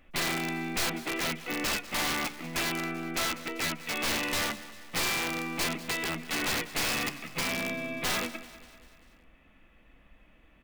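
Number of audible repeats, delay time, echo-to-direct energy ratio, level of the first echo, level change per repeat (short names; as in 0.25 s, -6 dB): 4, 0.195 s, -15.5 dB, -17.0 dB, -5.0 dB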